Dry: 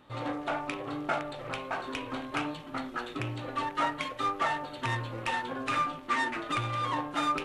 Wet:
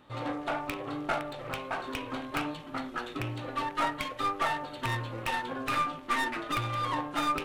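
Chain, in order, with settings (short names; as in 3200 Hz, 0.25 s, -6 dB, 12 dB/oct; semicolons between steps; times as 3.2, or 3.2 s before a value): tracing distortion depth 0.069 ms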